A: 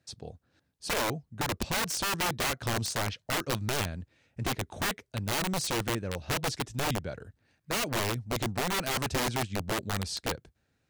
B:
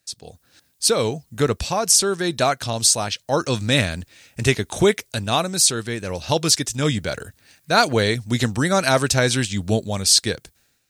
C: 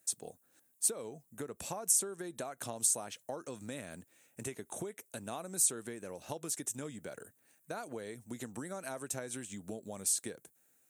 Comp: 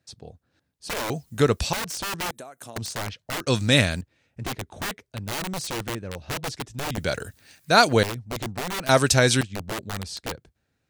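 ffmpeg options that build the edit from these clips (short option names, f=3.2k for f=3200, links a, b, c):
-filter_complex "[1:a]asplit=4[a][b][c][d];[0:a]asplit=6[e][f][g][h][i][j];[e]atrim=end=1.102[k];[a]atrim=start=1.098:end=1.732[l];[f]atrim=start=1.728:end=2.312[m];[2:a]atrim=start=2.308:end=2.762[n];[g]atrim=start=2.758:end=3.472[o];[b]atrim=start=3.468:end=4.012[p];[h]atrim=start=4.008:end=6.982[q];[c]atrim=start=6.978:end=8.032[r];[i]atrim=start=8.028:end=8.892[s];[d]atrim=start=8.888:end=9.412[t];[j]atrim=start=9.408[u];[k][l]acrossfade=d=0.004:c1=hsin:c2=hsin[v];[v][m]acrossfade=d=0.004:c1=hsin:c2=hsin[w];[w][n]acrossfade=d=0.004:c1=hsin:c2=hsin[x];[x][o]acrossfade=d=0.004:c1=hsin:c2=hsin[y];[y][p]acrossfade=d=0.004:c1=hsin:c2=hsin[z];[z][q]acrossfade=d=0.004:c1=hsin:c2=hsin[aa];[aa][r]acrossfade=d=0.004:c1=hsin:c2=hsin[ab];[ab][s]acrossfade=d=0.004:c1=hsin:c2=hsin[ac];[ac][t]acrossfade=d=0.004:c1=hsin:c2=hsin[ad];[ad][u]acrossfade=d=0.004:c1=hsin:c2=hsin"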